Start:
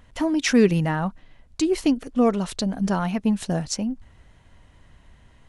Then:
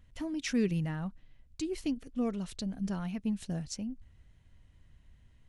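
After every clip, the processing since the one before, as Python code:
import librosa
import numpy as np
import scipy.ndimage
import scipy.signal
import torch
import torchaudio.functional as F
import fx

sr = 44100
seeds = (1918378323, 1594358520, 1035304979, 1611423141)

y = fx.curve_eq(x, sr, hz=(100.0, 920.0, 2400.0), db=(0, -13, -6))
y = y * 10.0 ** (-6.5 / 20.0)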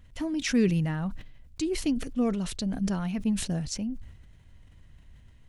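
y = fx.sustainer(x, sr, db_per_s=74.0)
y = y * 10.0 ** (5.5 / 20.0)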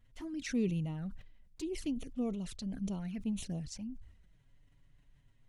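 y = fx.env_flanger(x, sr, rest_ms=9.1, full_db=-25.0)
y = y * 10.0 ** (-8.5 / 20.0)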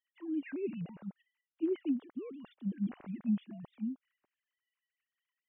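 y = fx.sine_speech(x, sr)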